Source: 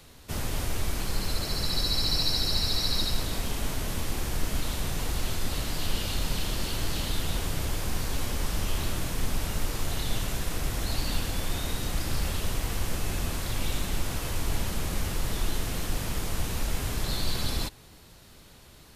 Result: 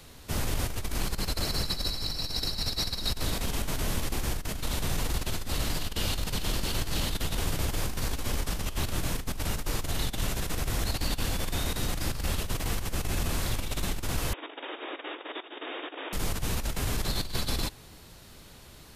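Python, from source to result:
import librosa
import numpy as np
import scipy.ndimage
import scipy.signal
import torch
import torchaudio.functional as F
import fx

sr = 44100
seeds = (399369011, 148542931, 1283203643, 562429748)

y = fx.over_compress(x, sr, threshold_db=-28.0, ratio=-0.5)
y = fx.brickwall_bandpass(y, sr, low_hz=270.0, high_hz=3800.0, at=(14.33, 16.13))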